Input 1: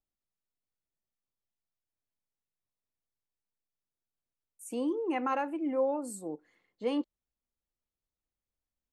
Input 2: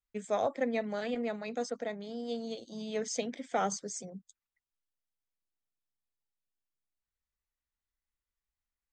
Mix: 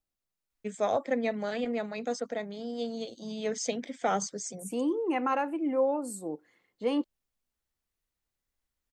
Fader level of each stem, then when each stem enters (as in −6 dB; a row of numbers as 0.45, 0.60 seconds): +2.5, +2.5 decibels; 0.00, 0.50 seconds